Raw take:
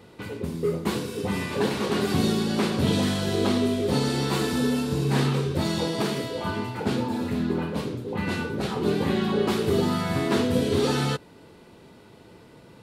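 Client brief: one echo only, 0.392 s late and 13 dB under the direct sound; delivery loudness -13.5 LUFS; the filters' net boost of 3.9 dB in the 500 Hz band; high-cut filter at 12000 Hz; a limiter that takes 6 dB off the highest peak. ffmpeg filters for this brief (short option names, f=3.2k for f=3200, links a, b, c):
-af "lowpass=12k,equalizer=f=500:t=o:g=5,alimiter=limit=-15dB:level=0:latency=1,aecho=1:1:392:0.224,volume=11.5dB"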